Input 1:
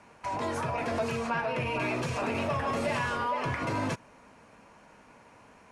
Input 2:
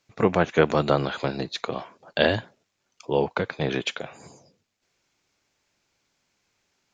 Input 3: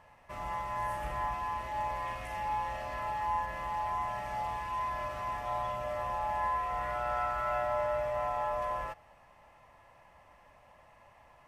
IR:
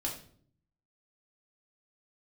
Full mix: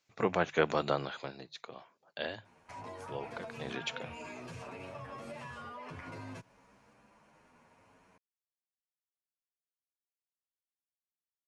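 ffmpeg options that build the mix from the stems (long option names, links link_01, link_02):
-filter_complex "[0:a]asplit=2[link_01][link_02];[link_02]adelay=9.3,afreqshift=0.58[link_03];[link_01][link_03]amix=inputs=2:normalize=1,adelay=2450,volume=-6dB[link_04];[1:a]lowshelf=frequency=370:gain=-8.5,bandreject=frequency=50:width_type=h:width=6,bandreject=frequency=100:width_type=h:width=6,bandreject=frequency=150:width_type=h:width=6,volume=2dB,afade=type=out:start_time=0.79:duration=0.62:silence=0.334965,afade=type=in:start_time=3.52:duration=0.46:silence=0.398107[link_05];[link_04]acompressor=threshold=-43dB:ratio=5,volume=0dB[link_06];[link_05][link_06]amix=inputs=2:normalize=0,equalizer=frequency=130:width=1.5:gain=2.5"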